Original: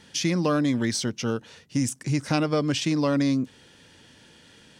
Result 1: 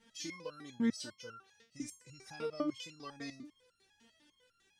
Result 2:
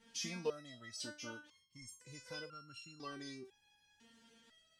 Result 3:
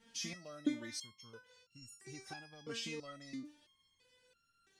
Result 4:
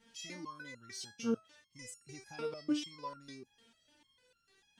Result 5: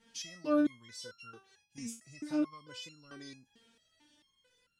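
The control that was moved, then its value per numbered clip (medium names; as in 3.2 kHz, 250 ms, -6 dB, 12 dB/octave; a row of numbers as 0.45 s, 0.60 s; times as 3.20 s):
resonator arpeggio, rate: 10 Hz, 2 Hz, 3 Hz, 6.7 Hz, 4.5 Hz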